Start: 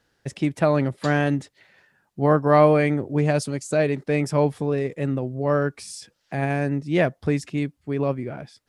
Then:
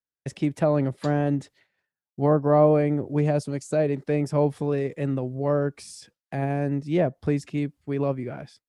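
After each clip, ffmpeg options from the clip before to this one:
ffmpeg -i in.wav -filter_complex "[0:a]agate=range=-33dB:threshold=-44dB:ratio=3:detection=peak,acrossover=split=730|790[link_01][link_02][link_03];[link_03]acompressor=threshold=-38dB:ratio=6[link_04];[link_01][link_02][link_04]amix=inputs=3:normalize=0,volume=-1.5dB" out.wav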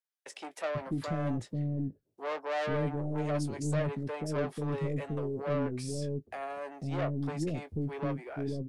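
ffmpeg -i in.wav -filter_complex "[0:a]asoftclip=type=tanh:threshold=-24dB,asplit=2[link_01][link_02];[link_02]adelay=19,volume=-11dB[link_03];[link_01][link_03]amix=inputs=2:normalize=0,acrossover=split=440[link_04][link_05];[link_04]adelay=490[link_06];[link_06][link_05]amix=inputs=2:normalize=0,volume=-2.5dB" out.wav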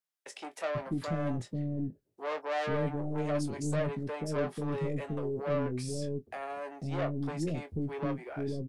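ffmpeg -i in.wav -filter_complex "[0:a]asplit=2[link_01][link_02];[link_02]adelay=24,volume=-11.5dB[link_03];[link_01][link_03]amix=inputs=2:normalize=0" out.wav

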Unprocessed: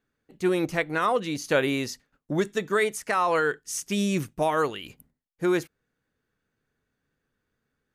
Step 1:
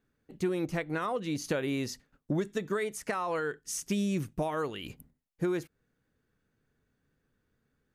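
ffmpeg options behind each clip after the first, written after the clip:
ffmpeg -i in.wav -af "acompressor=threshold=-31dB:ratio=4,lowshelf=frequency=430:gain=6.5,volume=-1.5dB" out.wav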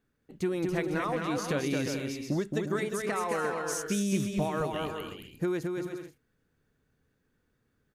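ffmpeg -i in.wav -af "aecho=1:1:220|352|431.2|478.7|507.2:0.631|0.398|0.251|0.158|0.1" out.wav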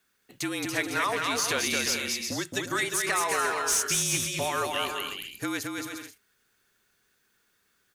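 ffmpeg -i in.wav -filter_complex "[0:a]afreqshift=-41,crystalizer=i=8:c=0,asplit=2[link_01][link_02];[link_02]highpass=frequency=720:poles=1,volume=15dB,asoftclip=type=tanh:threshold=-4.5dB[link_03];[link_01][link_03]amix=inputs=2:normalize=0,lowpass=frequency=3500:poles=1,volume=-6dB,volume=-6.5dB" out.wav

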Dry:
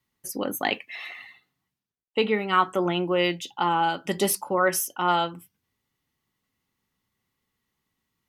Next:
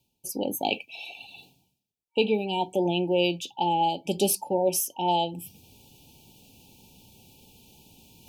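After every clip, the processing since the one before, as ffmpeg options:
ffmpeg -i in.wav -af "areverse,acompressor=mode=upward:threshold=-32dB:ratio=2.5,areverse,afftfilt=real='re*(1-between(b*sr/4096,930,2300))':imag='im*(1-between(b*sr/4096,930,2300))':win_size=4096:overlap=0.75" out.wav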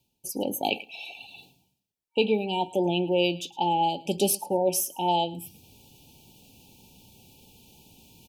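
ffmpeg -i in.wav -af "aecho=1:1:109|218:0.0891|0.0143" out.wav

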